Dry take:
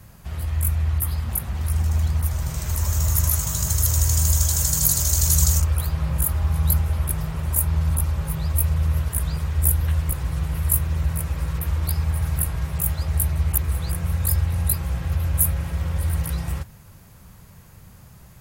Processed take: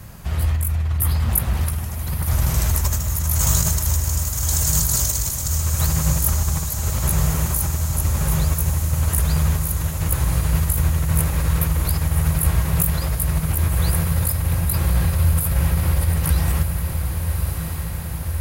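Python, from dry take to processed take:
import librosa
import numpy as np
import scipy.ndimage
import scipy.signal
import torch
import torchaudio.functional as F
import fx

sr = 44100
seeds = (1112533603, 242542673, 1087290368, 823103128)

y = fx.over_compress(x, sr, threshold_db=-24.0, ratio=-1.0)
y = fx.echo_diffused(y, sr, ms=1202, feedback_pct=70, wet_db=-6.5)
y = y * 10.0 ** (4.5 / 20.0)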